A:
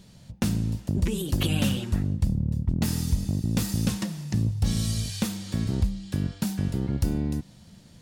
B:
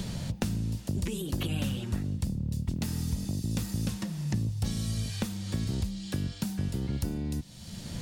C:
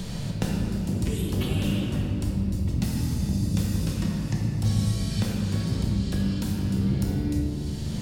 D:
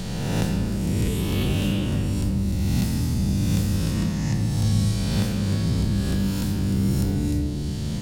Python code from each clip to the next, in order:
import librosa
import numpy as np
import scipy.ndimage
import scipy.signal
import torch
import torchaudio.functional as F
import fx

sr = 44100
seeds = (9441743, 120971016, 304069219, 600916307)

y1 = fx.band_squash(x, sr, depth_pct=100)
y1 = y1 * librosa.db_to_amplitude(-6.0)
y2 = fx.room_shoebox(y1, sr, seeds[0], volume_m3=160.0, walls='hard', distance_m=0.61)
y3 = fx.spec_swells(y2, sr, rise_s=1.6)